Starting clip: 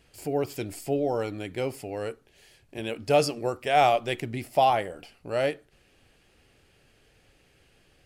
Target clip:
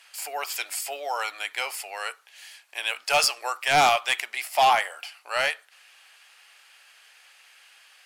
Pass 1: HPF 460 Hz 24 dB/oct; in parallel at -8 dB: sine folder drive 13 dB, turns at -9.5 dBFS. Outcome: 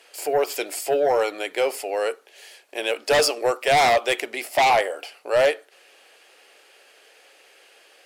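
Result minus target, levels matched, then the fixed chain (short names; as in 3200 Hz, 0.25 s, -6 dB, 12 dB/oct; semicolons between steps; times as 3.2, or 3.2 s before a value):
500 Hz band +7.5 dB
HPF 930 Hz 24 dB/oct; in parallel at -8 dB: sine folder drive 13 dB, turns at -9.5 dBFS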